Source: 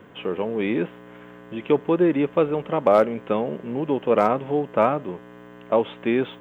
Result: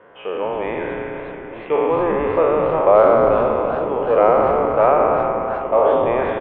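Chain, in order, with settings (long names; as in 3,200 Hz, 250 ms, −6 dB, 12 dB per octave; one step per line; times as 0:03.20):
peak hold with a decay on every bin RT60 2.90 s
low-pass filter 1,900 Hz 12 dB per octave
low shelf with overshoot 370 Hz −12 dB, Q 1.5
echo with shifted repeats 94 ms, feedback 57%, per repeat −150 Hz, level −12 dB
feedback echo with a swinging delay time 365 ms, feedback 70%, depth 148 cents, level −12.5 dB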